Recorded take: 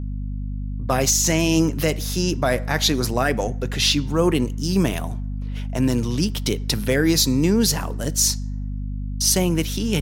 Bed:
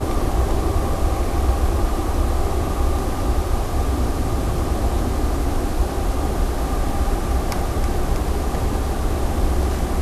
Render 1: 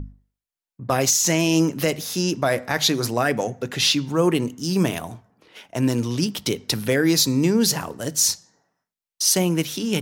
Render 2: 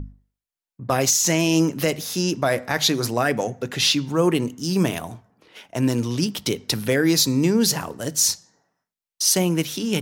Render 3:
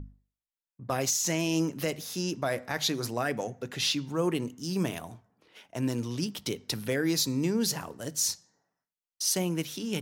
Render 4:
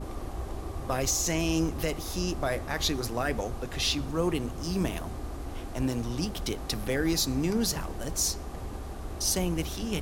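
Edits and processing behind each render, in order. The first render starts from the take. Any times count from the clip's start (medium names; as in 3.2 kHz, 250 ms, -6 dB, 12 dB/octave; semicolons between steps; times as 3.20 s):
hum notches 50/100/150/200/250 Hz
no audible change
trim -9 dB
add bed -16.5 dB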